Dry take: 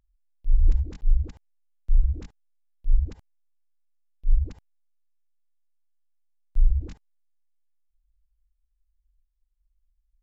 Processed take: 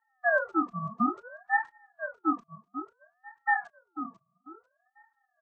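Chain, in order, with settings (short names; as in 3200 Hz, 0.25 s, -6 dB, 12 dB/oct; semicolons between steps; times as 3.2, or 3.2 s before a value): band inversion scrambler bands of 500 Hz; dynamic EQ 120 Hz, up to -5 dB, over -43 dBFS, Q 1.3; time stretch by phase-locked vocoder 0.53×; feedback echo 0.494 s, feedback 25%, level -10 dB; ring modulator with a swept carrier 1000 Hz, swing 35%, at 0.59 Hz; gain -5.5 dB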